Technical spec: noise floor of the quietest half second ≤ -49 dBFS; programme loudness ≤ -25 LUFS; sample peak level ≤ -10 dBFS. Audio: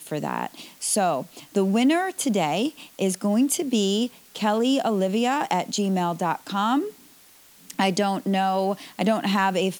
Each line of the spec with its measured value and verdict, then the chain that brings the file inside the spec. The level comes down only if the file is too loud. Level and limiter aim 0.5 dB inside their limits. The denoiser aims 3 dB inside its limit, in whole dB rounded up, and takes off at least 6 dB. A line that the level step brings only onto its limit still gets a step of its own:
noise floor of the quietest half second -52 dBFS: pass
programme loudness -24.0 LUFS: fail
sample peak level -7.0 dBFS: fail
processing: trim -1.5 dB; peak limiter -10.5 dBFS

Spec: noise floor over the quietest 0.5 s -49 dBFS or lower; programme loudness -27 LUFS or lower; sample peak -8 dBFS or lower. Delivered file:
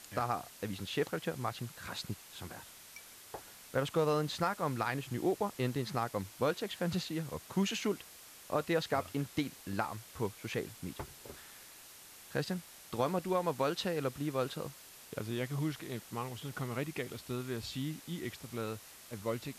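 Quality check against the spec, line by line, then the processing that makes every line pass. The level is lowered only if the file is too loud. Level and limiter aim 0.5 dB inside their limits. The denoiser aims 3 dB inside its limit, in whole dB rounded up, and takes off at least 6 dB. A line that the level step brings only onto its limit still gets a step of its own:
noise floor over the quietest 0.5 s -54 dBFS: pass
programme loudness -37.0 LUFS: pass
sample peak -17.5 dBFS: pass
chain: none needed

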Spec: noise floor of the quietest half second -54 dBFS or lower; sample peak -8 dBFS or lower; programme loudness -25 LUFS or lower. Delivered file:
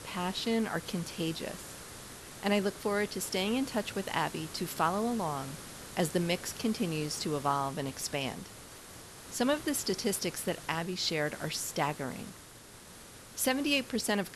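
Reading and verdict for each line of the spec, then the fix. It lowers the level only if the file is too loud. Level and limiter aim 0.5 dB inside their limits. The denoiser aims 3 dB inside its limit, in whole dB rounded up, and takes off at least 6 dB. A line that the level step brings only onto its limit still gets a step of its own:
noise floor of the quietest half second -52 dBFS: fail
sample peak -15.5 dBFS: pass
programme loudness -32.5 LUFS: pass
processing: noise reduction 6 dB, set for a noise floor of -52 dBFS

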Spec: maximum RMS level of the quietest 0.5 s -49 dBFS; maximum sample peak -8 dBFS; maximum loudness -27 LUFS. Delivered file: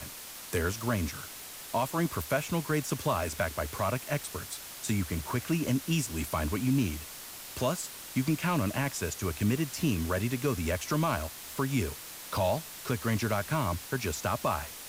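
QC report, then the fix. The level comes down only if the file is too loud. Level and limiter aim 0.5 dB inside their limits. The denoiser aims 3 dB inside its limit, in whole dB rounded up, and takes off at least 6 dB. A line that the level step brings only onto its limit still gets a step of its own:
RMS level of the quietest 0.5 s -44 dBFS: fail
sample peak -17.0 dBFS: pass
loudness -31.5 LUFS: pass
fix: noise reduction 8 dB, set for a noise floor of -44 dBFS

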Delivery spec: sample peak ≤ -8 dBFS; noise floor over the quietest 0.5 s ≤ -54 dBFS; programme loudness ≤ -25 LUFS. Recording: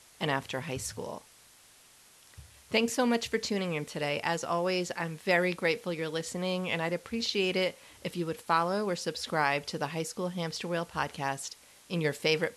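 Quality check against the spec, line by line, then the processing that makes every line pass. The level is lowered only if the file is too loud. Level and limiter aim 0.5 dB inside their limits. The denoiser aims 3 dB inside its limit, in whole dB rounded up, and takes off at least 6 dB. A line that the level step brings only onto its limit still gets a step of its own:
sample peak -13.0 dBFS: pass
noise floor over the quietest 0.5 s -58 dBFS: pass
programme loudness -31.5 LUFS: pass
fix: none needed

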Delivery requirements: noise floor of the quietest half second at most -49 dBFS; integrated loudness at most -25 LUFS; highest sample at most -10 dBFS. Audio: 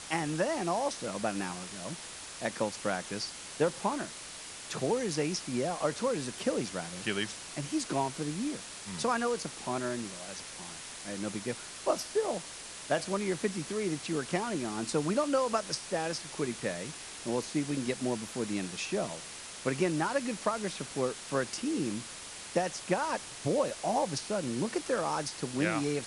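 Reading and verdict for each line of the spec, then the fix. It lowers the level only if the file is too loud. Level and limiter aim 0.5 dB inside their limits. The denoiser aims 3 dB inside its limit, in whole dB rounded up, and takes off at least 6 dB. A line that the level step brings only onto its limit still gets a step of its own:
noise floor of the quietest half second -45 dBFS: fail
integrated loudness -33.5 LUFS: pass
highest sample -14.5 dBFS: pass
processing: noise reduction 7 dB, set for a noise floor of -45 dBFS

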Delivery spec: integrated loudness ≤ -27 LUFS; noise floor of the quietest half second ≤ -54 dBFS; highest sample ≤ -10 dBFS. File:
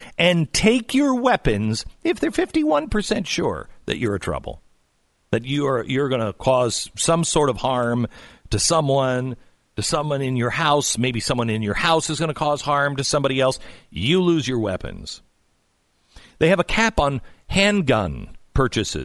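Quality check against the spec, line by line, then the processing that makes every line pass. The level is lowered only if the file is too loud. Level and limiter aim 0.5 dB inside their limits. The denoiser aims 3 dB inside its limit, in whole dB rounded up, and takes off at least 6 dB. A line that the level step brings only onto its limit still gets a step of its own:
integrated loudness -20.5 LUFS: fail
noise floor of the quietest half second -65 dBFS: pass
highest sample -2.5 dBFS: fail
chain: trim -7 dB; peak limiter -10.5 dBFS

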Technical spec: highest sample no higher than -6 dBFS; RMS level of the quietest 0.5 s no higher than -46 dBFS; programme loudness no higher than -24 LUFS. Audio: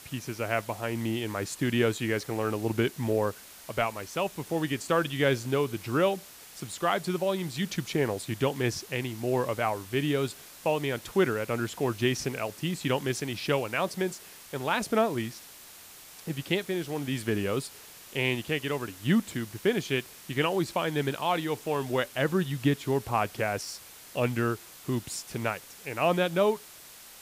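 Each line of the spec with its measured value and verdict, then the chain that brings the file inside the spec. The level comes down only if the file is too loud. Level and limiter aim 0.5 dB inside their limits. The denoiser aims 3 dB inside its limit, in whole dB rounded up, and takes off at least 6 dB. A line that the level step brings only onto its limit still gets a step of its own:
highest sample -12.0 dBFS: pass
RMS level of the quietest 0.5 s -49 dBFS: pass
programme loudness -29.5 LUFS: pass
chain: none needed

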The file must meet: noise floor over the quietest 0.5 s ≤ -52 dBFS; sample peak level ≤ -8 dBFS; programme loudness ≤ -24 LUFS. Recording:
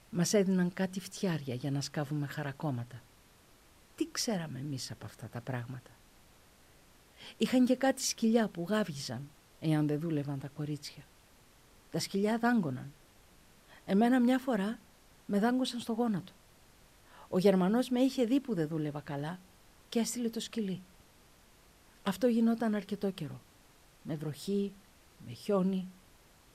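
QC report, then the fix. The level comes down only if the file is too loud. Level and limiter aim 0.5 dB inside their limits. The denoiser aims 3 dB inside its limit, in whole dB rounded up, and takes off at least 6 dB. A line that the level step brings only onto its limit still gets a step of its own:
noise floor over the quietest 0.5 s -61 dBFS: pass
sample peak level -15.0 dBFS: pass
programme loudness -33.0 LUFS: pass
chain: none needed

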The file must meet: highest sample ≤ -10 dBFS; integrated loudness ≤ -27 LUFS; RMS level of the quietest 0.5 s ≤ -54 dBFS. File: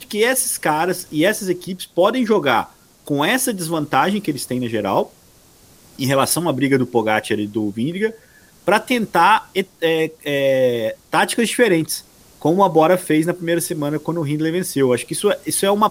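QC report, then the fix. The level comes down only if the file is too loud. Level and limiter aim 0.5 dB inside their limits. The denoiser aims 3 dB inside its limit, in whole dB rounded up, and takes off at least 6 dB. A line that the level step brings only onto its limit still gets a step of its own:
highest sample -2.0 dBFS: fail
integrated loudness -18.5 LUFS: fail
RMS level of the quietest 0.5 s -50 dBFS: fail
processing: trim -9 dB

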